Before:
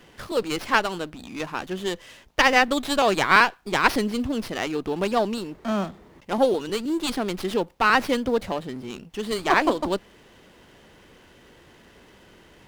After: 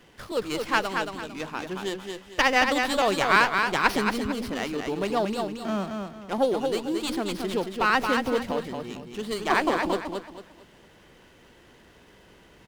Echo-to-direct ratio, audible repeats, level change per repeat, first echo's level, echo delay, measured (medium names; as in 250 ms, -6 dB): -4.5 dB, 3, -10.0 dB, -5.0 dB, 225 ms